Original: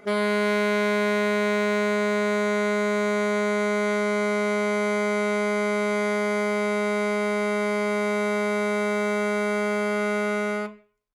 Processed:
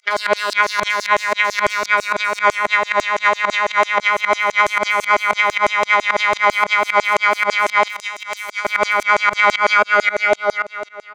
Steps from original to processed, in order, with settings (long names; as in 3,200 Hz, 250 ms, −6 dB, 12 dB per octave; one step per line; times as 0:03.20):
fade-out on the ending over 2.10 s
high-frequency loss of the air 170 metres
on a send: multi-tap delay 49/59/471 ms −16.5/−13.5/−10.5 dB
on the sum: fake sidechain pumping 113 BPM, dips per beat 2, −21 dB, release 176 ms
harmonic generator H 2 −42 dB, 3 −13 dB, 5 −28 dB, 7 −35 dB, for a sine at −16 dBFS
mains-hum notches 50/100/150/200 Hz
pitch vibrato 10 Hz 18 cents
wave folding −23 dBFS
compressor whose output falls as the input rises −35 dBFS, ratio −0.5
auto-filter high-pass saw down 6 Hz 500–7,300 Hz
0:07.88–0:08.65: first-order pre-emphasis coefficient 0.9
boost into a limiter +25.5 dB
level −2.5 dB